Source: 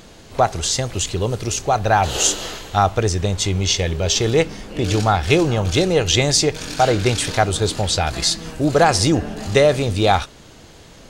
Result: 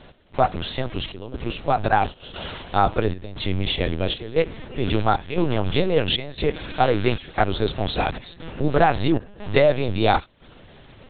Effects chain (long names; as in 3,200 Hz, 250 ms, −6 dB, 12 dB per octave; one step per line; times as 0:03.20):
0:01.89–0:02.30: downward expander −13 dBFS
gate pattern "x..xxxxxx" 134 BPM −12 dB
linear-prediction vocoder at 8 kHz pitch kept
level −2.5 dB